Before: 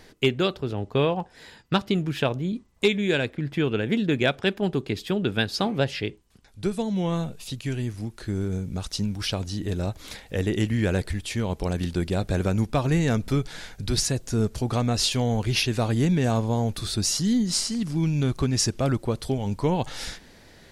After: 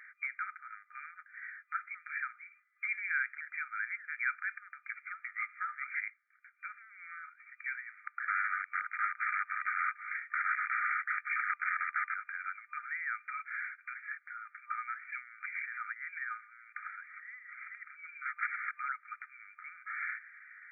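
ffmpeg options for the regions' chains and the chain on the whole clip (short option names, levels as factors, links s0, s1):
-filter_complex "[0:a]asettb=1/sr,asplit=3[s0][s1][s2];[s0]atrim=end=4.904[s3];[s1]atrim=start=4.9:end=5.95,asetpts=PTS-STARTPTS,afade=t=in:d=0.004:c=qsin,afade=t=out:st=1.046:d=0.004:c=qsin,afreqshift=19,aeval=exprs='val(0)*sin(2*PI*470*n/s)':c=same[s4];[s2]atrim=start=5.946[s5];[s3][s4]acrossfade=d=0.004:c1=hsin:c2=qsin[s6];[s6][s5]acrossfade=d=0.004:c1=qsin:c2=hsin,asettb=1/sr,asplit=3[s7][s8][s9];[s7]atrim=end=8.074[s10];[s8]atrim=start=8.07:end=12.14,asetpts=PTS-STARTPTS,afade=t=in:d=0.004:c=qsin,afade=t=out:st=4.066:d=0.004:c=qsin,aeval=exprs='(mod(18.8*val(0)+1,2)-1)/18.8':c=same,highpass=f=940:t=q:w=7.7[s11];[s9]atrim=start=12.136[s12];[s10][s11]acrossfade=d=0.004:c1=hsin:c2=qsin[s13];[s13][s12]acrossfade=d=0.004:c1=qsin:c2=hsin,asettb=1/sr,asplit=3[s14][s15][s16];[s14]atrim=end=18.254[s17];[s15]atrim=start=18.25:end=18.78,asetpts=PTS-STARTPTS,afade=t=in:d=0.004:c=qsin,afade=t=out:st=0.526:d=0.004:c=qsin,aecho=1:1:5.2:0.88,atrim=end_sample=23373,aeval=exprs='0.0473*(abs(mod(val(0)/0.0473+3,4)-2)-1)':c=same[s18];[s16]atrim=start=18.776[s19];[s17][s18]acrossfade=d=0.004:c1=hsin:c2=qsin[s20];[s20][s19]acrossfade=d=0.004:c1=qsin:c2=hsin,alimiter=limit=0.0891:level=0:latency=1:release=11,afftfilt=real='re*between(b*sr/4096,1200,2400)':imag='im*between(b*sr/4096,1200,2400)':win_size=4096:overlap=0.75,volume=1.88"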